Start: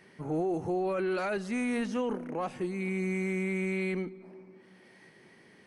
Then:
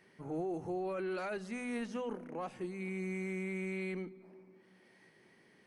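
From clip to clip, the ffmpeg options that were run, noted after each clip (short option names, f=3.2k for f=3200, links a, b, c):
-af "bandreject=f=50:t=h:w=6,bandreject=f=100:t=h:w=6,bandreject=f=150:t=h:w=6,bandreject=f=200:t=h:w=6,bandreject=f=250:t=h:w=6,volume=-7dB"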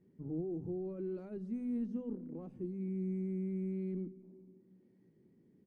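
-af "firequalizer=gain_entry='entry(260,0);entry(680,-21);entry(1700,-29)':delay=0.05:min_phase=1,volume=3.5dB"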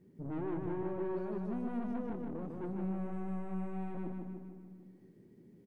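-af "aeval=exprs='(tanh(141*val(0)+0.35)-tanh(0.35))/141':c=same,aecho=1:1:152|304|456|608|760|912|1064:0.631|0.341|0.184|0.0994|0.0537|0.029|0.0156,volume=6.5dB"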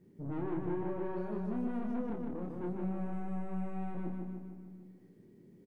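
-filter_complex "[0:a]asplit=2[a][b];[b]adelay=28,volume=-5.5dB[c];[a][c]amix=inputs=2:normalize=0"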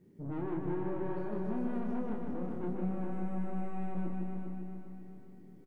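-af "aecho=1:1:400|800|1200|1600|2000:0.501|0.221|0.097|0.0427|0.0188"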